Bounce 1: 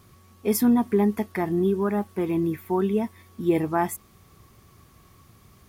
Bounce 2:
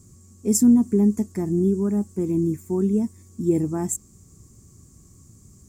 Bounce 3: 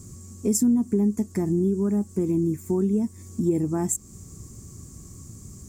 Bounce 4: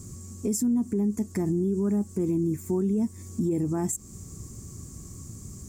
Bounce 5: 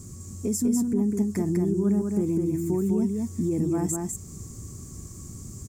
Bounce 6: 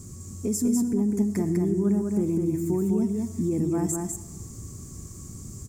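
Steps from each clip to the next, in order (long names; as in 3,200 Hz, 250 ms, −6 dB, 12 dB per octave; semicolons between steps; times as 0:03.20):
drawn EQ curve 280 Hz 0 dB, 720 Hz −16 dB, 3,500 Hz −21 dB, 7,500 Hz +12 dB, 11,000 Hz −9 dB; level +4.5 dB
downward compressor 2.5 to 1, threshold −32 dBFS, peak gain reduction 13.5 dB; level +7.5 dB
brickwall limiter −20 dBFS, peak gain reduction 10 dB; level +1 dB
single-tap delay 200 ms −3.5 dB
convolution reverb RT60 1.1 s, pre-delay 35 ms, DRR 13.5 dB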